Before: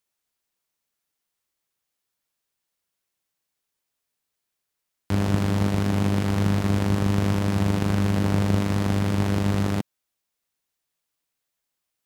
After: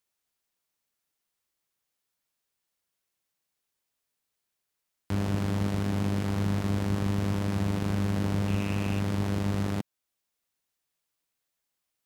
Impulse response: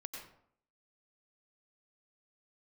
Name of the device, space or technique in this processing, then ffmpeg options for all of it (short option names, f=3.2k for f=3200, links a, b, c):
clipper into limiter: -filter_complex "[0:a]asettb=1/sr,asplit=3[a][b][c];[a]atrim=end=8.484[d];[b]atrim=start=8.48:end=9,asetpts=PTS-STARTPTS,afade=t=in:d=0.004:c=qsin,afade=t=out:st=0.516:d=0.004:c=qsin,equalizer=f=2.6k:w=3.7:g=11.5[e];[c]atrim=start=8.996[f];[d][e]acrossfade=d=0.004:c1=hsin:c2=qsin[g];[g][f]acrossfade=d=0.004:c1=qsin:c2=hsin,asoftclip=type=hard:threshold=-13.5dB,alimiter=limit=-17.5dB:level=0:latency=1:release=406,volume=-1.5dB"